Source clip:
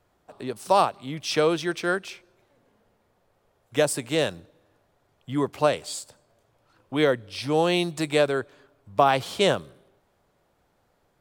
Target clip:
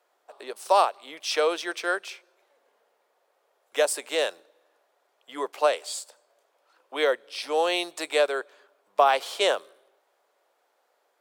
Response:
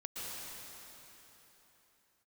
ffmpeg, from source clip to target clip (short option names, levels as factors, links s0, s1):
-af "highpass=f=440:w=0.5412,highpass=f=440:w=1.3066"